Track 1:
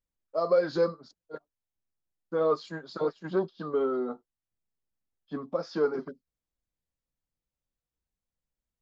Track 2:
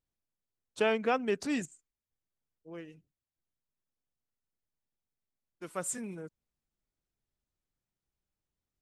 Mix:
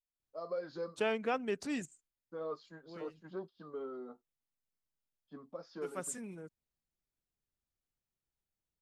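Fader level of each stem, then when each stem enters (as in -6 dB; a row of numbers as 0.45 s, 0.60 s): -15.0 dB, -5.0 dB; 0.00 s, 0.20 s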